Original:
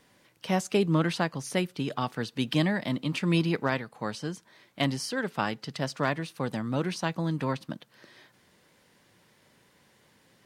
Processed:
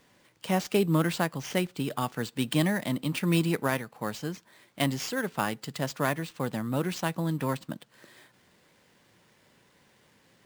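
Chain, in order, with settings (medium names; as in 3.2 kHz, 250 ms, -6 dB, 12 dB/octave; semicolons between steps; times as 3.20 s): sample-rate reducer 12 kHz, jitter 0%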